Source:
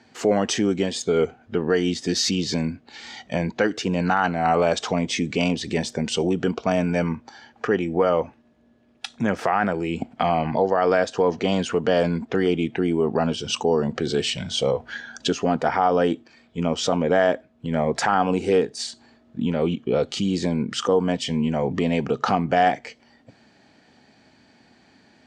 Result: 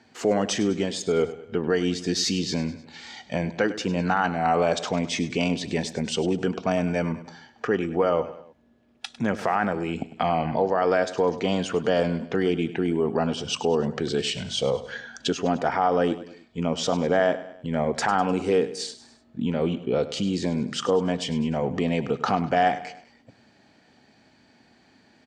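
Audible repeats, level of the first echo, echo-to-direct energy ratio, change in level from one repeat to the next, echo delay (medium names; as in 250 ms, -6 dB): 3, -15.0 dB, -14.0 dB, -6.0 dB, 101 ms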